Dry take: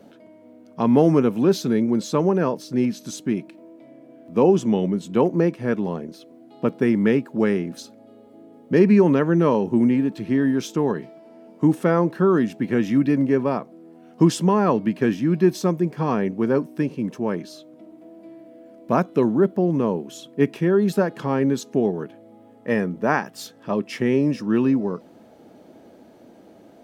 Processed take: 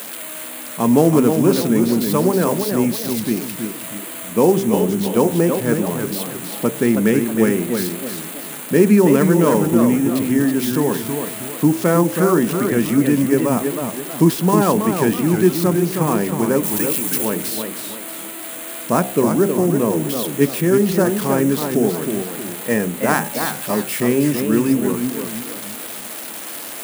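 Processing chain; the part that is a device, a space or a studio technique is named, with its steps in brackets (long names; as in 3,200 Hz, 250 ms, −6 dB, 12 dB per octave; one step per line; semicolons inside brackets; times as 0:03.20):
hum removal 64.87 Hz, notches 15
budget class-D amplifier (gap after every zero crossing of 0.088 ms; spike at every zero crossing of −15.5 dBFS)
0:16.63–0:17.25: spectral tilt +3 dB per octave
feedback echo with a swinging delay time 321 ms, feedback 39%, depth 175 cents, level −6 dB
level +3 dB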